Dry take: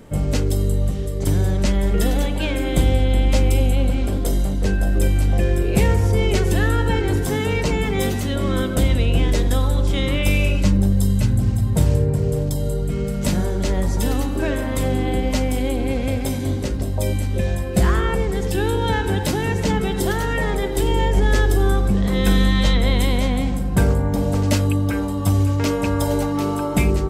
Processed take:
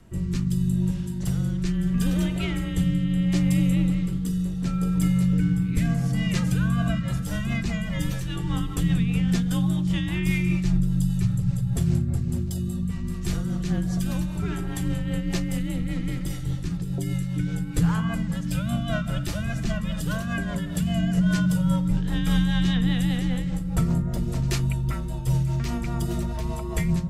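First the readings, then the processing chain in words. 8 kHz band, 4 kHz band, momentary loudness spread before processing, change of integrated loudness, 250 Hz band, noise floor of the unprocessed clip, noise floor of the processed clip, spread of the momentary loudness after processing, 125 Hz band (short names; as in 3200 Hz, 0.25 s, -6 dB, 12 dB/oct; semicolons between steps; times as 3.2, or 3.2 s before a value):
-7.5 dB, -7.5 dB, 5 LU, -5.0 dB, -1.5 dB, -23 dBFS, -30 dBFS, 7 LU, -4.0 dB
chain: rotary speaker horn 0.75 Hz, later 5 Hz, at 6.32; frequency shift -230 Hz; gain -4.5 dB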